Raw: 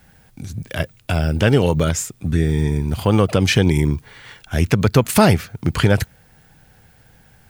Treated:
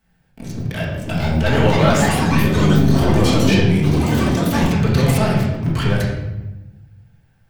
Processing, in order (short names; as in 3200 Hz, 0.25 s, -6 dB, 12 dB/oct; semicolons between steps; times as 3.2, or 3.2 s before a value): 1.44–2.4 band shelf 1300 Hz +11.5 dB 2.8 oct; sample leveller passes 3; limiter -6 dBFS, peak gain reduction 12.5 dB; reverb RT60 1.1 s, pre-delay 4 ms, DRR -5.5 dB; echoes that change speed 0.645 s, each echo +5 st, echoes 3; gain -11.5 dB